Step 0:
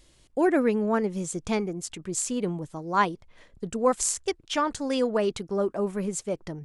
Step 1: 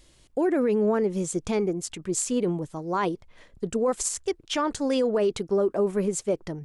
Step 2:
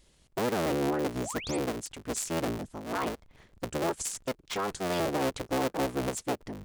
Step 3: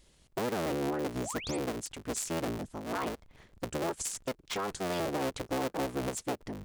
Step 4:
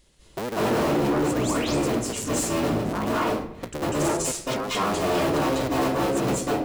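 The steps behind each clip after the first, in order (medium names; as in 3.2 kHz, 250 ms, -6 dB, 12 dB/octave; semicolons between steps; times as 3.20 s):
dynamic bell 410 Hz, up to +6 dB, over -37 dBFS, Q 1.4; peak limiter -18 dBFS, peak gain reduction 10 dB; trim +1.5 dB
cycle switcher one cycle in 3, inverted; painted sound rise, 1.17–1.57 s, 280–9700 Hz -35 dBFS; trim -6 dB
compression 2:1, threshold -32 dBFS, peak gain reduction 4 dB
reverberation RT60 0.70 s, pre-delay 191 ms, DRR -8.5 dB; overload inside the chain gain 20.5 dB; trim +2 dB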